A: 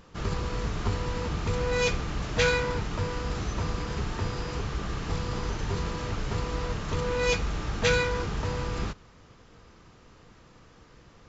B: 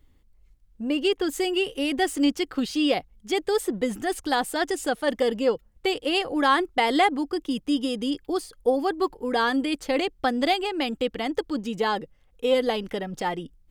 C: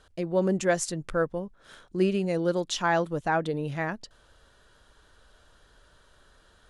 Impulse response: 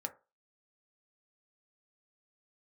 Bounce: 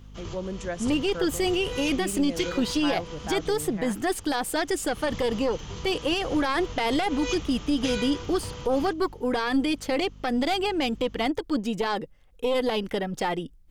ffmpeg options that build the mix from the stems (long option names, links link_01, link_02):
-filter_complex "[0:a]equalizer=frequency=1600:width_type=o:width=0.33:gain=-4,equalizer=frequency=3150:width_type=o:width=0.33:gain=11,equalizer=frequency=6300:width_type=o:width=0.33:gain=8,aeval=exprs='val(0)+0.0141*(sin(2*PI*50*n/s)+sin(2*PI*2*50*n/s)/2+sin(2*PI*3*50*n/s)/3+sin(2*PI*4*50*n/s)/4+sin(2*PI*5*50*n/s)/5)':channel_layout=same,volume=5dB,afade=type=out:start_time=3.46:duration=0.28:silence=0.237137,afade=type=in:start_time=4.81:duration=0.23:silence=0.237137[link_01];[1:a]aeval=exprs='0.335*(cos(1*acos(clip(val(0)/0.335,-1,1)))-cos(1*PI/2))+0.133*(cos(2*acos(clip(val(0)/0.335,-1,1)))-cos(2*PI/2))':channel_layout=same,volume=2.5dB[link_02];[2:a]volume=-8.5dB,asplit=2[link_03][link_04];[link_04]apad=whole_len=497581[link_05];[link_01][link_05]sidechaincompress=threshold=-39dB:ratio=3:attack=40:release=137[link_06];[link_06][link_02]amix=inputs=2:normalize=0,alimiter=limit=-15.5dB:level=0:latency=1:release=47,volume=0dB[link_07];[link_03][link_07]amix=inputs=2:normalize=0"